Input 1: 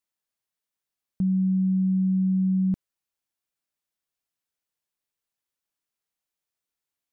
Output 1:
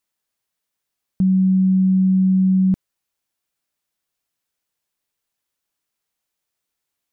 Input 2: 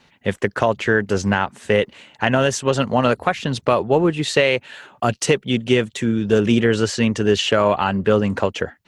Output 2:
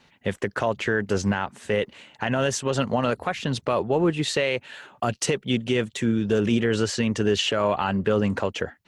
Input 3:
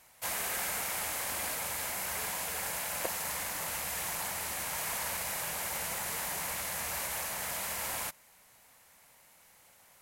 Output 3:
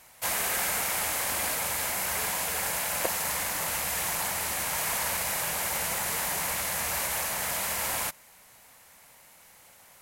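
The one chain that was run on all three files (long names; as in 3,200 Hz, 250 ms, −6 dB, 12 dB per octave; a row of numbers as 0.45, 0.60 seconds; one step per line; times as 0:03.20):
brickwall limiter −9 dBFS
normalise the peak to −12 dBFS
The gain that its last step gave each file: +7.0, −3.0, +6.0 decibels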